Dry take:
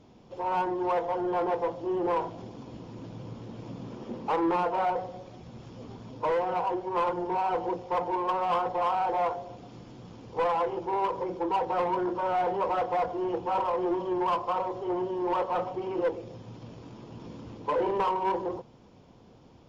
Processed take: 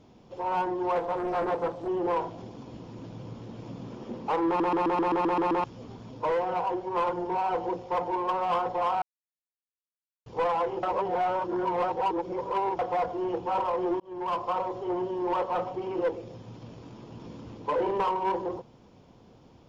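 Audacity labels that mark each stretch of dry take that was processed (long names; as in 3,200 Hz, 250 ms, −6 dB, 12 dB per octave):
0.950000	1.880000	highs frequency-modulated by the lows depth 0.58 ms
4.470000	4.470000	stutter in place 0.13 s, 9 plays
9.020000	10.260000	silence
10.830000	12.790000	reverse
14.000000	14.420000	fade in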